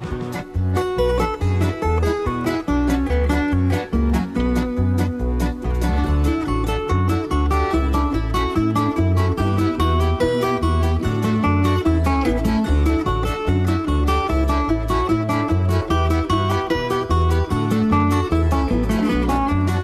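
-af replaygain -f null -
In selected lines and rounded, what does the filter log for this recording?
track_gain = +3.4 dB
track_peak = 0.270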